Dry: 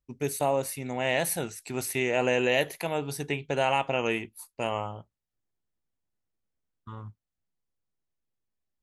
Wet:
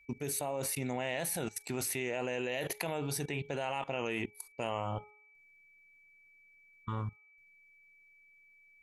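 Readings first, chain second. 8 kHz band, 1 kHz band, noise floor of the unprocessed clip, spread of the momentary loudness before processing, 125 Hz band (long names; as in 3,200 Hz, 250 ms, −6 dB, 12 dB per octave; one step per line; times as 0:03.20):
−2.0 dB, −8.5 dB, below −85 dBFS, 18 LU, −3.0 dB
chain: output level in coarse steps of 21 dB
steady tone 2,300 Hz −67 dBFS
hum removal 420.3 Hz, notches 3
level +6.5 dB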